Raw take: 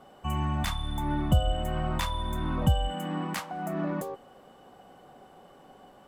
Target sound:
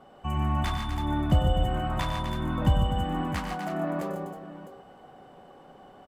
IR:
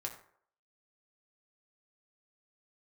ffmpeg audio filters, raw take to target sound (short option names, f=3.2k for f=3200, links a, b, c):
-af "aemphasis=mode=reproduction:type=cd,aecho=1:1:94|123|146|248|321|655:0.316|0.299|0.447|0.355|0.282|0.224"